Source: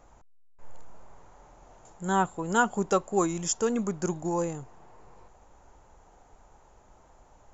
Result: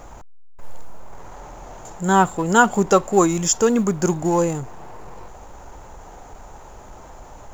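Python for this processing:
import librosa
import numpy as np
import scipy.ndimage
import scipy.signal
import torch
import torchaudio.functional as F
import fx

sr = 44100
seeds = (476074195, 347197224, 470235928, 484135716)

y = fx.law_mismatch(x, sr, coded='mu')
y = y * librosa.db_to_amplitude(9.0)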